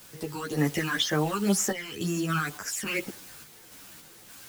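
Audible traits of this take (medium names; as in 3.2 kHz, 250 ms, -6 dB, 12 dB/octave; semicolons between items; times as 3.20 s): phasing stages 12, 2 Hz, lowest notch 600–3900 Hz; a quantiser's noise floor 8-bit, dither triangular; random-step tremolo; a shimmering, thickened sound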